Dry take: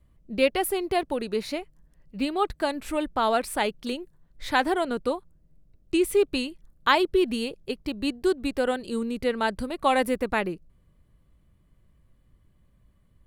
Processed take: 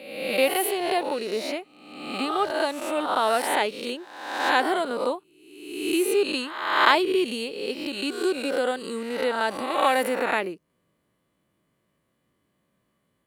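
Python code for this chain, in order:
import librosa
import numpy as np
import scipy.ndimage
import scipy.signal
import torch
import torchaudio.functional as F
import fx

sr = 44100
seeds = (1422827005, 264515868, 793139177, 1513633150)

y = fx.spec_swells(x, sr, rise_s=1.0)
y = scipy.signal.sosfilt(scipy.signal.butter(2, 270.0, 'highpass', fs=sr, output='sos'), y)
y = y * 10.0 ** (-1.0 / 20.0)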